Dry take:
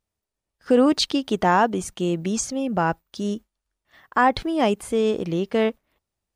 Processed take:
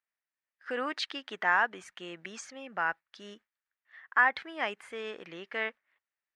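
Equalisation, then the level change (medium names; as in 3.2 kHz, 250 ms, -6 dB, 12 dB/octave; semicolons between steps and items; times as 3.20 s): band-pass filter 1.8 kHz, Q 2.9; +2.5 dB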